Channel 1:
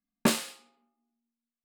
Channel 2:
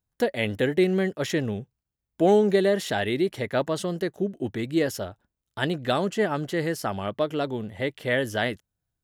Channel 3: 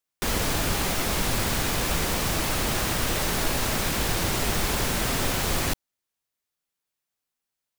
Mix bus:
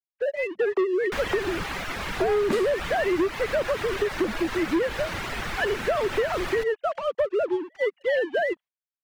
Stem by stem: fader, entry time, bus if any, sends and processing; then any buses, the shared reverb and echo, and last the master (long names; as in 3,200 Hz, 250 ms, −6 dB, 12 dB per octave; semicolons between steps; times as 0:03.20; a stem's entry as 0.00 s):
+0.5 dB, 2.25 s, no send, no processing
−10.0 dB, 0.00 s, no send, three sine waves on the formant tracks; leveller curve on the samples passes 3; automatic gain control gain up to 9 dB
−6.5 dB, 0.90 s, no send, parametric band 1,800 Hz +10 dB 2.1 octaves; reverb reduction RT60 0.72 s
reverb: not used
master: high-shelf EQ 6,000 Hz −12 dB; downward compressor, threshold −21 dBFS, peak gain reduction 7.5 dB